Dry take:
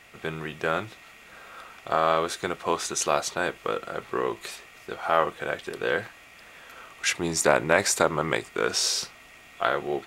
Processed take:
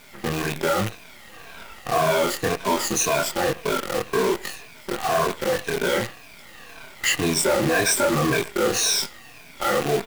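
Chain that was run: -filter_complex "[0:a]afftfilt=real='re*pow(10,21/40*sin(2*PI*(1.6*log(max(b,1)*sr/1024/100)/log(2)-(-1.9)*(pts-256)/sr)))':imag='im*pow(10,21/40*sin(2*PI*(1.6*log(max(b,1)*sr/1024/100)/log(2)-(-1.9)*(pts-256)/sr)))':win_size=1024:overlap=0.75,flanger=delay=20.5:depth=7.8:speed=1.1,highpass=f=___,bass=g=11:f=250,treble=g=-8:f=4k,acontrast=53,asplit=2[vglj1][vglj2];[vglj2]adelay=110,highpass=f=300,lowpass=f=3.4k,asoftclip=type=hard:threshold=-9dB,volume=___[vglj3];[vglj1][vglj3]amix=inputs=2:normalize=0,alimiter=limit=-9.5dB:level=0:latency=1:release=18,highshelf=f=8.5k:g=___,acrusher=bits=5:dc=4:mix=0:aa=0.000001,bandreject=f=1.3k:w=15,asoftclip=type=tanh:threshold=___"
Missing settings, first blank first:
170, -19dB, 11, -12.5dB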